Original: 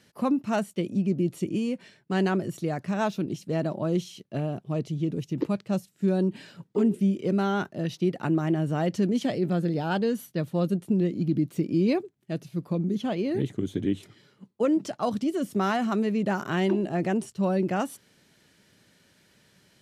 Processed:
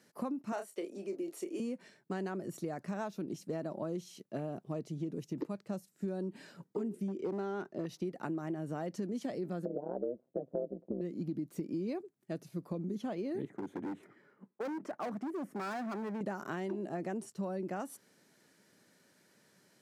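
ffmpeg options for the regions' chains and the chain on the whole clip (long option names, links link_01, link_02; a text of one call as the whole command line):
ffmpeg -i in.wav -filter_complex "[0:a]asettb=1/sr,asplit=3[link_01][link_02][link_03];[link_01]atrim=end=0.524[link_04];[link_02]atrim=start=0.52:end=1.6,asetpts=PTS-STARTPTS,afade=type=in:duration=0.004:curve=qsin,afade=type=out:start_time=1.076:duration=0.004:curve=qsin,highpass=frequency=350:width=0.5412,highpass=frequency=350:width=1.3066,asplit=2[link_05][link_06];[link_06]adelay=30,volume=-8dB[link_07];[link_05][link_07]amix=inputs=2:normalize=0,atrim=end_sample=47628[link_08];[link_03]atrim=start=1.596[link_09];[link_04][link_08]acrossfade=duration=0.004:curve1=hsin:curve2=qsin[link_10];[link_10][link_09]acrossfade=duration=0.004:curve1=qsin:curve2=hsin,asettb=1/sr,asplit=3[link_11][link_12][link_13];[link_11]atrim=end=7.084[link_14];[link_12]atrim=start=7.08:end=7.86,asetpts=PTS-STARTPTS,afade=type=in:duration=0.004:curve=qsin,afade=type=out:start_time=0.776:duration=0.004:curve=qsin,lowpass=6700,equalizer=frequency=380:width=2.5:gain=7,aeval=exprs='clip(val(0),-1,0.106)':channel_layout=same[link_15];[link_13]atrim=start=7.856[link_16];[link_14][link_15]acrossfade=duration=0.004:curve1=hsin:curve2=qsin[link_17];[link_17][link_16]acrossfade=duration=0.004:curve1=qsin:curve2=hsin,asettb=1/sr,asplit=3[link_18][link_19][link_20];[link_18]atrim=end=9.654[link_21];[link_19]atrim=start=9.65:end=11.01,asetpts=PTS-STARTPTS,afade=type=in:duration=0.004:curve=qsin,afade=type=out:start_time=1.356:duration=0.004:curve=qsin,lowpass=frequency=520:width_type=q:width=6.3,tremolo=f=130:d=0.974[link_22];[link_20]atrim=start=11.006[link_23];[link_21][link_22]acrossfade=duration=0.004:curve1=hsin:curve2=qsin[link_24];[link_24][link_23]acrossfade=duration=0.004:curve1=qsin:curve2=hsin,asettb=1/sr,asplit=3[link_25][link_26][link_27];[link_25]atrim=end=13.454[link_28];[link_26]atrim=start=13.45:end=16.21,asetpts=PTS-STARTPTS,afade=type=in:duration=0.004:curve=qsin,afade=type=out:start_time=2.756:duration=0.004:curve=qsin,highpass=160,highshelf=frequency=2800:width_type=q:width=1.5:gain=-13,asoftclip=type=hard:threshold=-29dB[link_29];[link_27]atrim=start=16.206[link_30];[link_28][link_29]acrossfade=duration=0.004:curve1=hsin:curve2=qsin[link_31];[link_31][link_30]acrossfade=duration=0.004:curve1=qsin:curve2=hsin,highpass=200,acompressor=threshold=-31dB:ratio=6,equalizer=frequency=3100:width_type=o:width=0.97:gain=-8.5,volume=-3dB" out.wav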